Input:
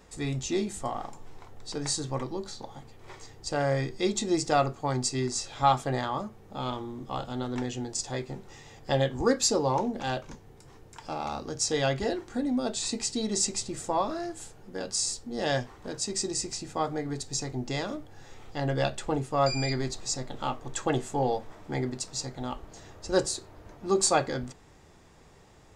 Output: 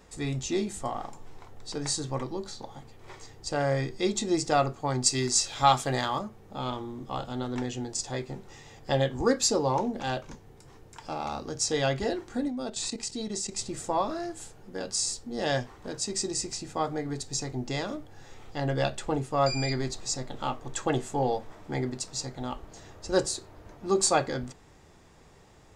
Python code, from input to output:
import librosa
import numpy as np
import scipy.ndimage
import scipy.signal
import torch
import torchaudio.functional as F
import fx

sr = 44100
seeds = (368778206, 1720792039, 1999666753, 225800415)

y = fx.high_shelf(x, sr, hz=2100.0, db=9.0, at=(5.06, 6.19))
y = fx.level_steps(y, sr, step_db=11, at=(12.48, 13.59))